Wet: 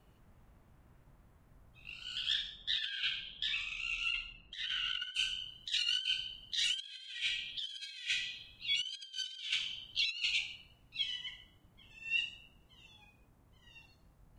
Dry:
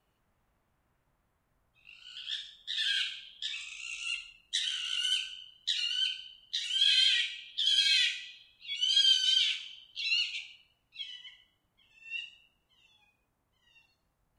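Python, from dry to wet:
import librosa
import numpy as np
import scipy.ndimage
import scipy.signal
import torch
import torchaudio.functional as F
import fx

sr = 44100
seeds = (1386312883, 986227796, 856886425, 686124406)

y = fx.low_shelf(x, sr, hz=410.0, db=10.0)
y = fx.over_compress(y, sr, threshold_db=-35.0, ratio=-0.5)
y = fx.lowpass(y, sr, hz=fx.line((2.33, 4600.0), (5.14, 2200.0)), slope=12, at=(2.33, 5.14), fade=0.02)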